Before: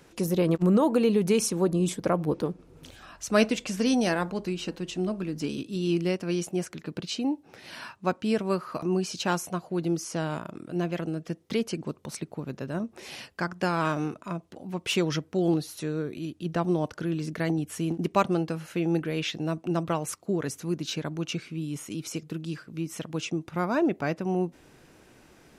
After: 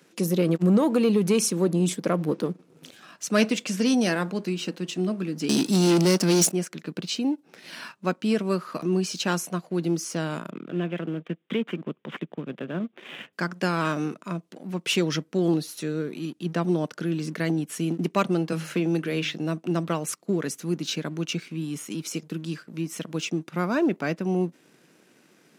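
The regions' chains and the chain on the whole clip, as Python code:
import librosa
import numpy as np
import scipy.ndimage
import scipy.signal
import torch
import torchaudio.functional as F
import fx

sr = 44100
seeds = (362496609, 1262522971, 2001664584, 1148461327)

y = fx.chain(x, sr, fx.high_shelf_res(hz=3900.0, db=7.0, q=1.5),
    fx.leveller(passes=3), at=(5.49, 6.52))
y = fx.chain(y, sr, fx.law_mismatch(coded='A'),
    fx.resample_bad(factor=6, down='none', up='filtered'),
    fx.band_squash(depth_pct=40), at=(10.5, 13.33))
y = fx.chain(y, sr, fx.lowpass(hz=12000.0, slope=12),
    fx.hum_notches(base_hz=50, count=6),
    fx.band_squash(depth_pct=70), at=(18.52, 19.34))
y = fx.peak_eq(y, sr, hz=830.0, db=-5.5, octaves=0.91)
y = fx.leveller(y, sr, passes=1)
y = scipy.signal.sosfilt(scipy.signal.cheby1(3, 1.0, 170.0, 'highpass', fs=sr, output='sos'), y)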